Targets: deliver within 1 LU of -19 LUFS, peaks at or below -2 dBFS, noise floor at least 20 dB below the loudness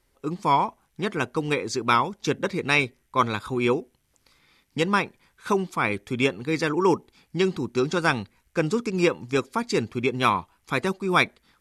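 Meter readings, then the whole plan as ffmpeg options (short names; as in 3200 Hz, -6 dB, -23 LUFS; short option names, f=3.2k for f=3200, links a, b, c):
loudness -25.0 LUFS; peak -6.0 dBFS; loudness target -19.0 LUFS
-> -af "volume=6dB,alimiter=limit=-2dB:level=0:latency=1"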